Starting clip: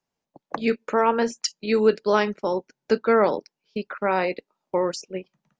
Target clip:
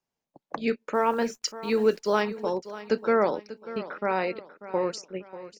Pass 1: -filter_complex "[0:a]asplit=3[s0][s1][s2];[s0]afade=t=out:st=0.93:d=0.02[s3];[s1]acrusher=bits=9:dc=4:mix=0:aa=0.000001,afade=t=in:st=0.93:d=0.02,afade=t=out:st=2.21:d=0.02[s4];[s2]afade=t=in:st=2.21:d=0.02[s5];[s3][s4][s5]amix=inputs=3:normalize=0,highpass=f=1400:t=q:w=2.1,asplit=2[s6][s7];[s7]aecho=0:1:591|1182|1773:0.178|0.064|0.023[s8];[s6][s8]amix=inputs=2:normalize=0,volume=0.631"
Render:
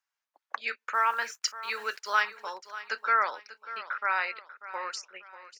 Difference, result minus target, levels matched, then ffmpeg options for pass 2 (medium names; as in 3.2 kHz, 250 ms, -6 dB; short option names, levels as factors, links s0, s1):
1 kHz band +3.5 dB
-filter_complex "[0:a]asplit=3[s0][s1][s2];[s0]afade=t=out:st=0.93:d=0.02[s3];[s1]acrusher=bits=9:dc=4:mix=0:aa=0.000001,afade=t=in:st=0.93:d=0.02,afade=t=out:st=2.21:d=0.02[s4];[s2]afade=t=in:st=2.21:d=0.02[s5];[s3][s4][s5]amix=inputs=3:normalize=0,asplit=2[s6][s7];[s7]aecho=0:1:591|1182|1773:0.178|0.064|0.023[s8];[s6][s8]amix=inputs=2:normalize=0,volume=0.631"